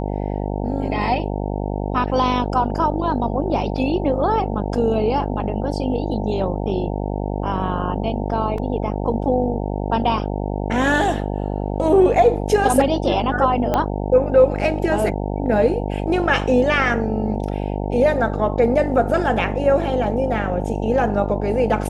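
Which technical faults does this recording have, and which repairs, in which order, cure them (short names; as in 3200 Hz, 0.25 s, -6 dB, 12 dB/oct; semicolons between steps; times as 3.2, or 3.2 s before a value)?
buzz 50 Hz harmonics 18 -24 dBFS
8.58 gap 2.6 ms
13.74 pop -7 dBFS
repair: de-click; de-hum 50 Hz, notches 18; interpolate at 8.58, 2.6 ms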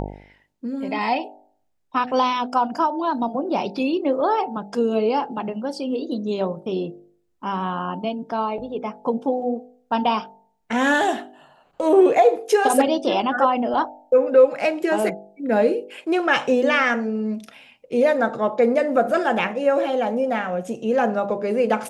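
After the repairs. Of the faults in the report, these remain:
13.74 pop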